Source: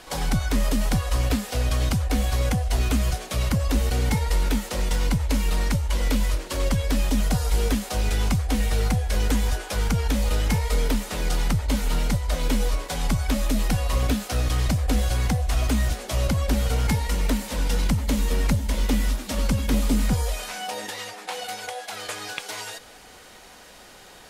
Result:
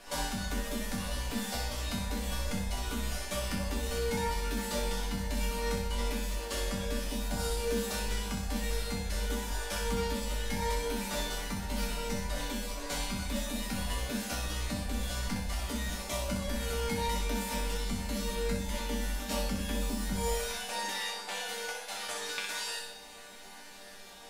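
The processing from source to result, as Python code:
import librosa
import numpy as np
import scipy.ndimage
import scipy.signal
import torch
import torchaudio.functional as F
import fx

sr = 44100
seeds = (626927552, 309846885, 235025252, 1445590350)

p1 = fx.over_compress(x, sr, threshold_db=-24.0, ratio=-0.5)
p2 = x + (p1 * 10.0 ** (0.5 / 20.0))
p3 = fx.resonator_bank(p2, sr, root=55, chord='minor', decay_s=0.44)
p4 = fx.room_flutter(p3, sr, wall_m=10.7, rt60_s=0.69)
y = p4 * 10.0 ** (6.0 / 20.0)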